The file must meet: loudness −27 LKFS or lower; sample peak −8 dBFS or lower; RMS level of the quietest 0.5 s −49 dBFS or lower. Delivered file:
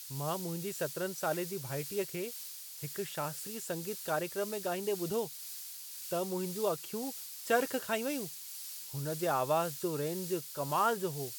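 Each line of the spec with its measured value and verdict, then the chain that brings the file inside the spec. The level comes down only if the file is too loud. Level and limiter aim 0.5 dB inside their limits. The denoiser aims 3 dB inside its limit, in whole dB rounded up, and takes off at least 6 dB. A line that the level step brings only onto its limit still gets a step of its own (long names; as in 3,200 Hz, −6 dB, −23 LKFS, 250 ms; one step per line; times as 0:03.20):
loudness −35.5 LKFS: in spec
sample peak −15.5 dBFS: in spec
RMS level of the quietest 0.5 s −46 dBFS: out of spec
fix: broadband denoise 6 dB, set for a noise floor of −46 dBFS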